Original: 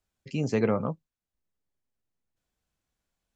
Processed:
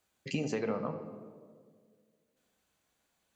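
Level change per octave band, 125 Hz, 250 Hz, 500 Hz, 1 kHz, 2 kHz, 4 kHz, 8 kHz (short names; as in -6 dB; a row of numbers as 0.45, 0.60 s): -9.0 dB, -6.5 dB, -6.5 dB, -5.5 dB, -3.5 dB, +0.5 dB, n/a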